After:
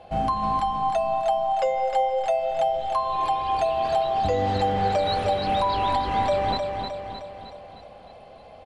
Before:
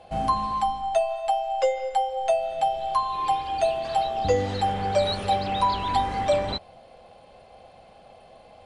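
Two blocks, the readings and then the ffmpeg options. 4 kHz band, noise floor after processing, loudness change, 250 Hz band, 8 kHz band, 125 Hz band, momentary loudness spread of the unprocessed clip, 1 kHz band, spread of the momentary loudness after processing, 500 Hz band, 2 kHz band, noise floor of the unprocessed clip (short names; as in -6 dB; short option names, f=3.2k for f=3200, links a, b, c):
-0.5 dB, -46 dBFS, +1.0 dB, +2.0 dB, n/a, +1.5 dB, 2 LU, +1.5 dB, 9 LU, +1.0 dB, +1.0 dB, -52 dBFS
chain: -af "lowpass=f=3.6k:p=1,alimiter=limit=-18dB:level=0:latency=1:release=162,aecho=1:1:309|618|927|1236|1545|1854|2163:0.531|0.281|0.149|0.079|0.0419|0.0222|0.0118,volume=2.5dB"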